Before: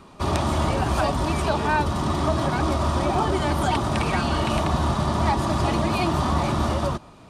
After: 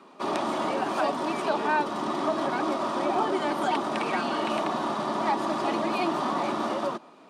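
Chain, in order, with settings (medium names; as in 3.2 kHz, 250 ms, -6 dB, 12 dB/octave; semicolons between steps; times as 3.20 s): high-pass 240 Hz 24 dB/octave; treble shelf 5.4 kHz -10.5 dB; trim -2 dB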